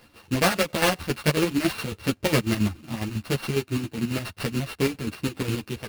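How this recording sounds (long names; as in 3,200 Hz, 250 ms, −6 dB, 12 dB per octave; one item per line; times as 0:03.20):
a buzz of ramps at a fixed pitch in blocks of 16 samples
chopped level 7.3 Hz, depth 60%, duty 50%
aliases and images of a low sample rate 7,000 Hz, jitter 20%
a shimmering, thickened sound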